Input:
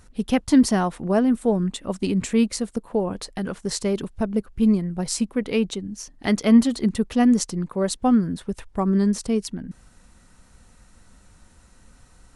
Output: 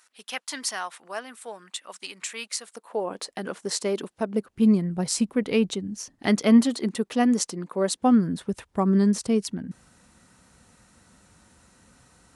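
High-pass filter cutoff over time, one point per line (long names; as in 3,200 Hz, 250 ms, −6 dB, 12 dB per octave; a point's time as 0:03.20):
0:02.57 1,300 Hz
0:03.22 310 Hz
0:04.23 310 Hz
0:04.83 95 Hz
0:06.14 95 Hz
0:06.75 280 Hz
0:07.71 280 Hz
0:08.44 100 Hz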